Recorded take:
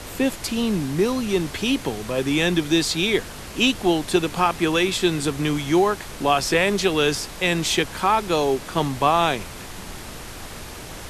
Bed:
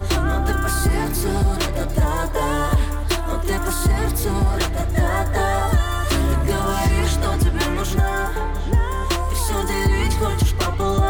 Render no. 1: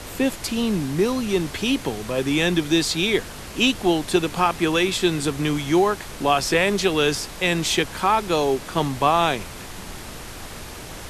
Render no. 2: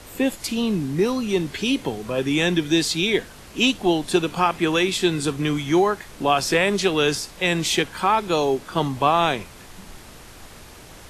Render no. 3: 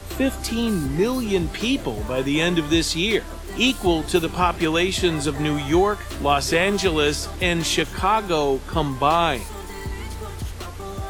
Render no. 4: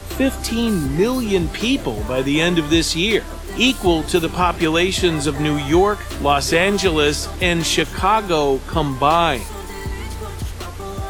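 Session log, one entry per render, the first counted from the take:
nothing audible
noise print and reduce 7 dB
add bed -13 dB
gain +3.5 dB; limiter -3 dBFS, peak gain reduction 2 dB

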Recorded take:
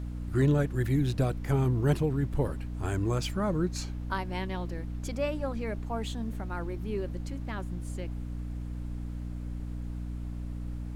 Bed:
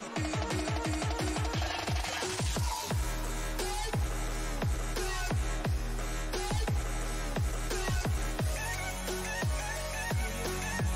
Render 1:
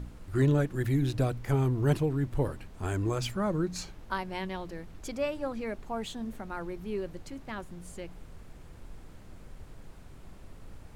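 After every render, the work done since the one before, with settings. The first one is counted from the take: de-hum 60 Hz, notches 5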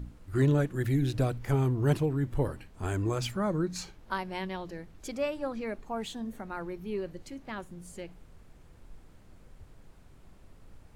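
noise print and reduce 6 dB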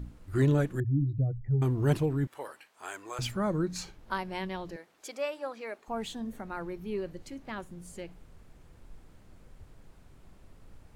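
0.8–1.62 spectral contrast raised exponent 2.6; 2.27–3.19 HPF 820 Hz; 4.76–5.88 HPF 500 Hz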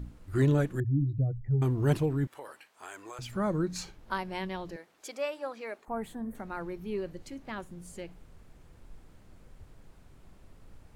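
2.39–3.33 compressor 3:1, threshold -40 dBFS; 5.85–6.35 band shelf 4300 Hz -14.5 dB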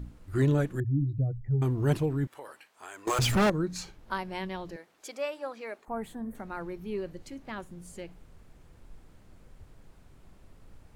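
3.07–3.5 sample leveller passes 5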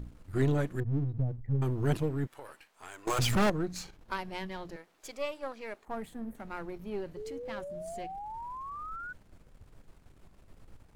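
half-wave gain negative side -7 dB; 7.16–9.13 painted sound rise 410–1500 Hz -41 dBFS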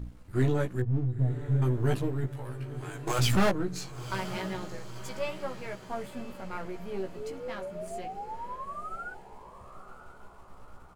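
doubler 16 ms -3.5 dB; on a send: diffused feedback echo 0.991 s, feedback 50%, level -12.5 dB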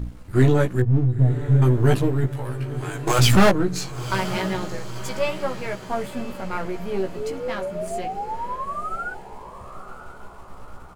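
gain +9.5 dB

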